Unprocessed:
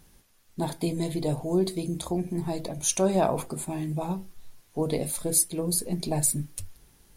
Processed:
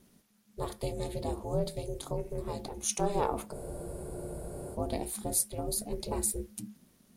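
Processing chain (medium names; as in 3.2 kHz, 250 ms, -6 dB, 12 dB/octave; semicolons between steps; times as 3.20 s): ring modulator 210 Hz; spectral freeze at 3.56 s, 1.18 s; trim -3.5 dB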